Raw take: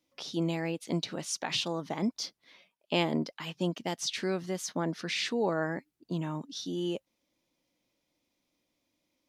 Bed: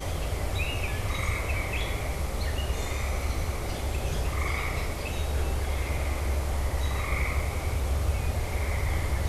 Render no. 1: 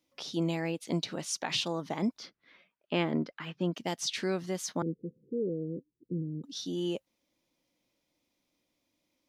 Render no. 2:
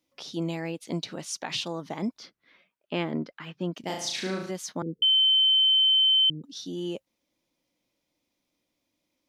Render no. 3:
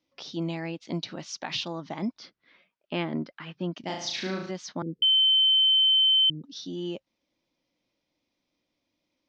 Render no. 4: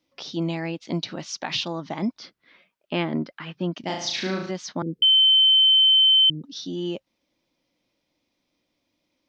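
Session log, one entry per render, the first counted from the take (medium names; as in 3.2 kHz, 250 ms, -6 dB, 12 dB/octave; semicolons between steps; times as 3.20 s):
2.18–3.74 s: FFT filter 360 Hz 0 dB, 630 Hz -3 dB, 940 Hz -4 dB, 1.4 kHz +4 dB, 7.9 kHz -16 dB; 4.82–6.44 s: rippled Chebyshev low-pass 510 Hz, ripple 3 dB
3.80–4.51 s: flutter echo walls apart 6.2 m, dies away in 0.64 s; 5.02–6.30 s: bleep 3.08 kHz -17.5 dBFS
dynamic bell 460 Hz, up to -7 dB, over -54 dBFS, Q 5.5; steep low-pass 5.9 kHz 36 dB/octave
trim +4.5 dB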